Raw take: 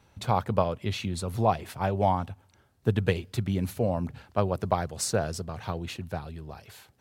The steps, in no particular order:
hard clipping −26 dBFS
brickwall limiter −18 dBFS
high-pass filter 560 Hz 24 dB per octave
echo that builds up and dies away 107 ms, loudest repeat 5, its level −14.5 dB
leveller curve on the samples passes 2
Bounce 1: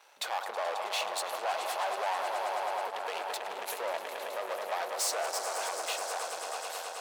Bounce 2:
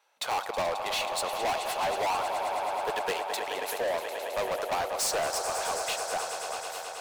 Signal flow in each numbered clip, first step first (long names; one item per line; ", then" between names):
echo that builds up and dies away, then brickwall limiter, then hard clipping, then leveller curve on the samples, then high-pass filter
high-pass filter, then leveller curve on the samples, then echo that builds up and dies away, then hard clipping, then brickwall limiter